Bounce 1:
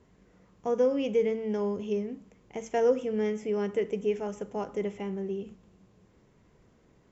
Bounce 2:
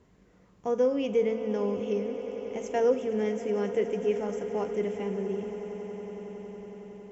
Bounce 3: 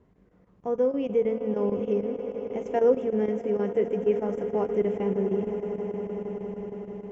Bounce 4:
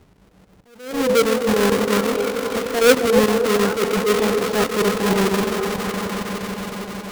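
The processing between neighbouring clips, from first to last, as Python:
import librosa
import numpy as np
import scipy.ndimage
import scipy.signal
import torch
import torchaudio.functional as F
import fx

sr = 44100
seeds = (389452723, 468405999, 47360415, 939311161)

y1 = fx.echo_swell(x, sr, ms=92, loudest=8, wet_db=-18.0)
y2 = fx.rider(y1, sr, range_db=4, speed_s=2.0)
y2 = fx.chopper(y2, sr, hz=6.4, depth_pct=65, duty_pct=85)
y2 = fx.lowpass(y2, sr, hz=1100.0, slope=6)
y2 = y2 * librosa.db_to_amplitude(4.0)
y3 = fx.halfwave_hold(y2, sr)
y3 = fx.echo_stepped(y3, sr, ms=270, hz=440.0, octaves=0.7, feedback_pct=70, wet_db=-4)
y3 = fx.attack_slew(y3, sr, db_per_s=100.0)
y3 = y3 * librosa.db_to_amplitude(5.0)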